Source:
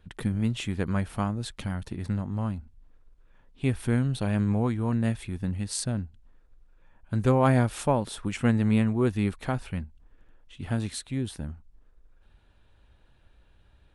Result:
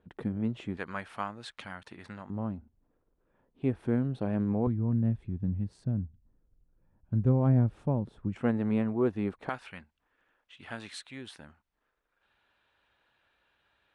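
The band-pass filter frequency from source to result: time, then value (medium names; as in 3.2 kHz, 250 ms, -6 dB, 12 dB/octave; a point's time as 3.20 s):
band-pass filter, Q 0.68
440 Hz
from 0.77 s 1.6 kHz
from 2.30 s 390 Hz
from 4.67 s 130 Hz
from 8.36 s 540 Hz
from 9.49 s 1.8 kHz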